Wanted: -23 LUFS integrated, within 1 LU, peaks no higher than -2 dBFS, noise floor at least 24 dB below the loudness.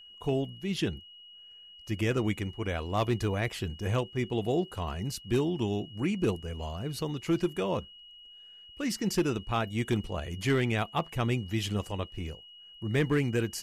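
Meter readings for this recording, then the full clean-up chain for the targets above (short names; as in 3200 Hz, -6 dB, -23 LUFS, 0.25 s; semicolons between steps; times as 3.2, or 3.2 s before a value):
clipped 0.5%; flat tops at -19.5 dBFS; steady tone 2900 Hz; tone level -49 dBFS; loudness -31.5 LUFS; peak -19.5 dBFS; loudness target -23.0 LUFS
-> clip repair -19.5 dBFS; notch 2900 Hz, Q 30; gain +8.5 dB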